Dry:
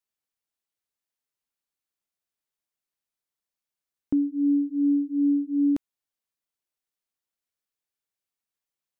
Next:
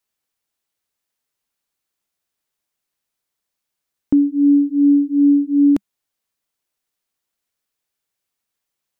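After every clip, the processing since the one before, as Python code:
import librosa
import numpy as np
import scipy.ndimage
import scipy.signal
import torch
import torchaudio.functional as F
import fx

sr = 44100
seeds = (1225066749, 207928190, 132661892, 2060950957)

y = fx.dynamic_eq(x, sr, hz=200.0, q=4.0, threshold_db=-41.0, ratio=4.0, max_db=3)
y = y * librosa.db_to_amplitude(9.0)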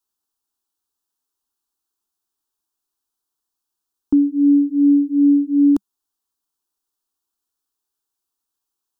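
y = fx.fixed_phaser(x, sr, hz=570.0, stages=6)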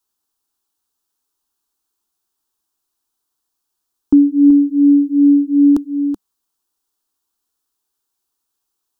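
y = x + 10.0 ** (-10.0 / 20.0) * np.pad(x, (int(379 * sr / 1000.0), 0))[:len(x)]
y = y * librosa.db_to_amplitude(5.0)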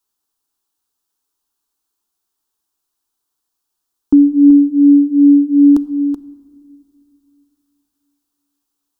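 y = fx.room_shoebox(x, sr, seeds[0], volume_m3=3600.0, walls='mixed', distance_m=0.36)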